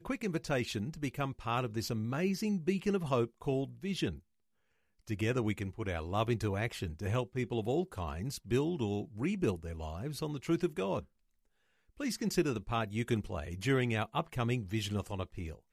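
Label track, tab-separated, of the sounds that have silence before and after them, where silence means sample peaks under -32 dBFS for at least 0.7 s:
5.110000	10.990000	sound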